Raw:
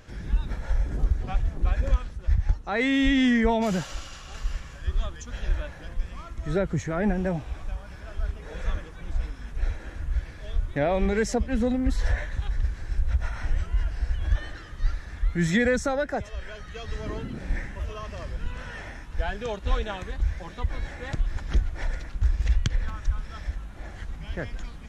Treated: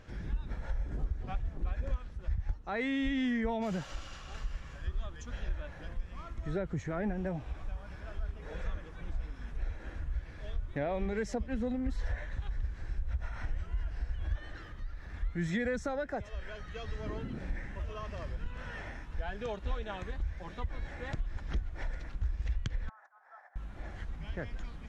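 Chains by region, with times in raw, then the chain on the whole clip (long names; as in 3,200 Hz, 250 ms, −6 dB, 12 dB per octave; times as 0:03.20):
0:14.63–0:15.14: running median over 5 samples + downward compressor 2 to 1, threshold −38 dBFS
0:22.89–0:23.56: high shelf with overshoot 2,200 Hz −10 dB, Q 3 + downward compressor 16 to 1, threshold −32 dBFS + four-pole ladder high-pass 710 Hz, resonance 75%
whole clip: low-pass filter 3,600 Hz 6 dB per octave; downward compressor 2 to 1, threshold −31 dBFS; level −3.5 dB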